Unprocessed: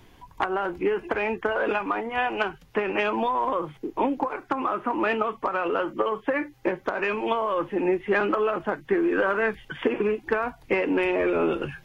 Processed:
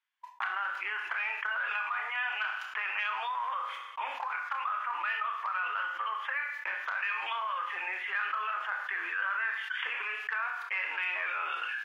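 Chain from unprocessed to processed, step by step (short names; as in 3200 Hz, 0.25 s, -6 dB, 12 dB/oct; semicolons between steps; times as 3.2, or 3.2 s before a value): HPF 1300 Hz 24 dB/oct; gate -51 dBFS, range -59 dB; LPF 1900 Hz 6 dB/oct; doubler 30 ms -12 dB; Schroeder reverb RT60 0.45 s, combs from 26 ms, DRR 9 dB; fast leveller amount 70%; gain -4 dB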